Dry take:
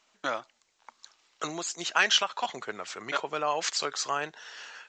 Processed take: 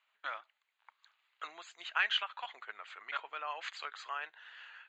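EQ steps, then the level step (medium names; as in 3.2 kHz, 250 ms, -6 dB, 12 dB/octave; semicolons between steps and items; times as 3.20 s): boxcar filter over 8 samples; Bessel high-pass 1.9 kHz, order 2; distance through air 120 m; 0.0 dB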